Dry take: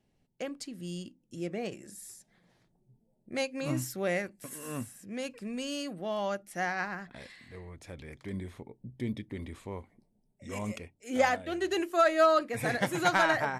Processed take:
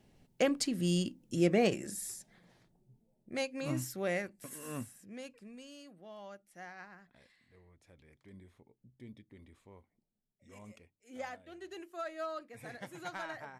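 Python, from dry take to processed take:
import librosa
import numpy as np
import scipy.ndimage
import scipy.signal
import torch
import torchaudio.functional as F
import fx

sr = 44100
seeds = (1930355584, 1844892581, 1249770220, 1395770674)

y = fx.gain(x, sr, db=fx.line((1.62, 8.5), (3.4, -3.5), (4.78, -3.5), (5.73, -16.5)))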